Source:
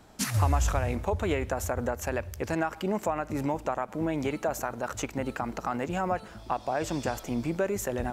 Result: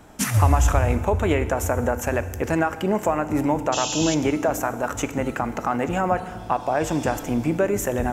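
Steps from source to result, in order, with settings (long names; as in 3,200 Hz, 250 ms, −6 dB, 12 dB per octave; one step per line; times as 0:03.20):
sound drawn into the spectrogram noise, 0:03.72–0:04.15, 2,500–7,500 Hz −33 dBFS
parametric band 4,400 Hz −8.5 dB 0.52 octaves
feedback delay network reverb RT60 1.7 s, low-frequency decay 1.45×, high-frequency decay 0.85×, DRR 11.5 dB
level +7 dB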